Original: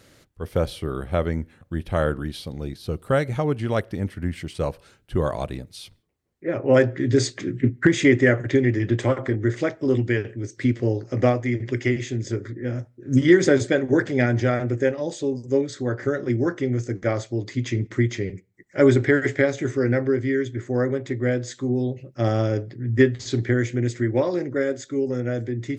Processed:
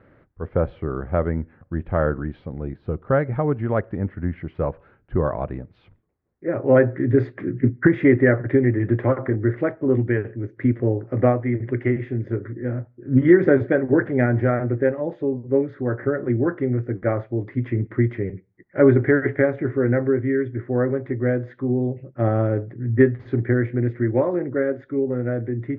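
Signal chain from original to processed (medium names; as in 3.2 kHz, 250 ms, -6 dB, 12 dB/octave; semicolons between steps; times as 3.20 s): low-pass 1.8 kHz 24 dB/octave; trim +1.5 dB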